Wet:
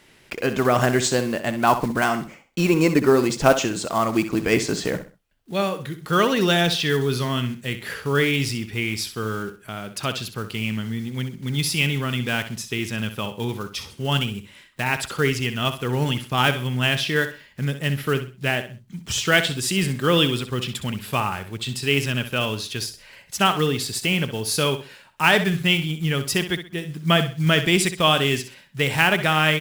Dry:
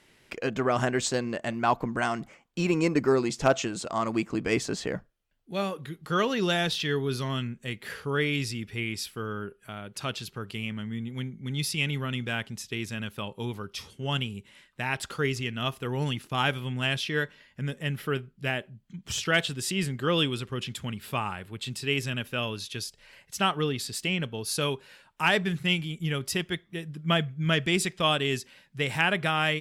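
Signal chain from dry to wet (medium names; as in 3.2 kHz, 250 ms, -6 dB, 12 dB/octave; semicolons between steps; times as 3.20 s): block-companded coder 5-bit; feedback delay 64 ms, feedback 29%, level -11 dB; trim +6.5 dB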